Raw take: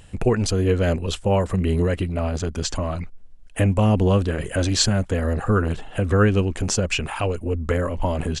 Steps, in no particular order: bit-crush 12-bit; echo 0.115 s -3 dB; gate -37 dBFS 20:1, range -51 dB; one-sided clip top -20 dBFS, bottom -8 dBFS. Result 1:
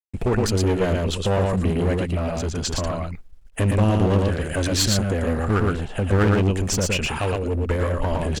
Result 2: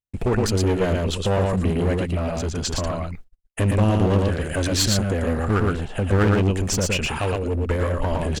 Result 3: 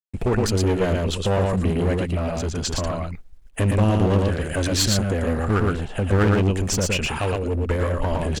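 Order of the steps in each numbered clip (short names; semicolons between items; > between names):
echo > gate > bit-crush > one-sided clip; echo > one-sided clip > bit-crush > gate; echo > gate > one-sided clip > bit-crush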